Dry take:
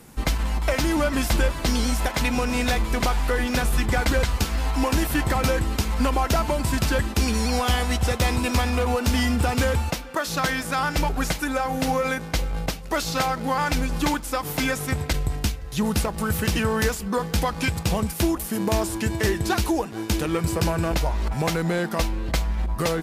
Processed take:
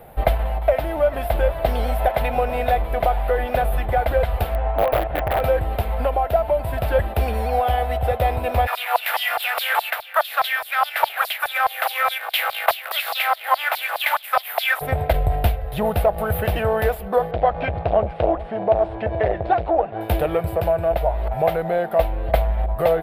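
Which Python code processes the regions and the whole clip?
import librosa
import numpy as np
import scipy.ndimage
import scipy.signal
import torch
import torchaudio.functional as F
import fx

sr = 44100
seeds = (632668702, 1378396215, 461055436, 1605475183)

y = fx.chain(x, sr, fx.lowpass(hz=2200.0, slope=12),
    fx.overflow_wrap(gain_db=15.0), at=(4.54, 5.41))
y = fx.spec_flatten(y, sr, power=0.65, at=(8.66, 14.8), fade=0.02)
y = fx.cheby1_highpass(y, sr, hz=360.0, order=2, at=(8.66, 14.8), fade=0.02)
y = fx.filter_lfo_highpass(y, sr, shape='saw_down', hz=4.8, low_hz=940.0, high_hz=4900.0, q=4.4, at=(8.66, 14.8), fade=0.02)
y = fx.chain(y, sr, fx.gaussian_blur(sigma=2.0),
    fx.transformer_sat(knee_hz=400.0), at=(17.31, 20.01))
y = fx.curve_eq(y, sr, hz=(100.0, 270.0, 680.0, 1000.0, 1800.0, 3600.0, 6300.0, 13000.0), db=(0, -12, 14, -3, -3, -8, -30, -1))
y = fx.rider(y, sr, range_db=10, speed_s=0.5)
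y = y * librosa.db_to_amplitude(1.5)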